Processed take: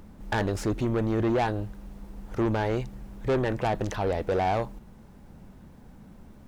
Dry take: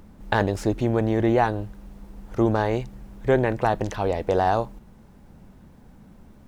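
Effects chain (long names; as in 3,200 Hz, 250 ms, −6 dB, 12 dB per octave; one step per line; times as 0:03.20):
soft clipping −20 dBFS, distortion −10 dB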